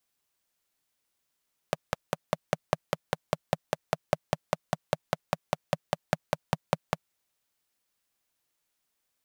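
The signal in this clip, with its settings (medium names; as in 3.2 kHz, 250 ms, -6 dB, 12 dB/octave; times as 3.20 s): single-cylinder engine model, steady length 5.39 s, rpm 600, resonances 160/590 Hz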